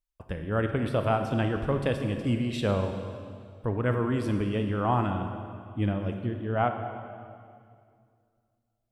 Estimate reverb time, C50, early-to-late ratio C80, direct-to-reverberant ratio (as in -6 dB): 2.2 s, 6.5 dB, 7.5 dB, 5.5 dB